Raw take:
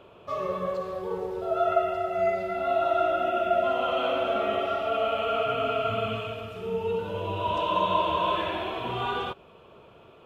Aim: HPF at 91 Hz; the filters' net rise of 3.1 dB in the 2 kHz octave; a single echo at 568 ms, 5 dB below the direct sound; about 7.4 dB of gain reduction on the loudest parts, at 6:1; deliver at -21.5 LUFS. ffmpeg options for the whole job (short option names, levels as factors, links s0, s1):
-af "highpass=91,equalizer=f=2000:t=o:g=4.5,acompressor=threshold=0.0447:ratio=6,aecho=1:1:568:0.562,volume=2.66"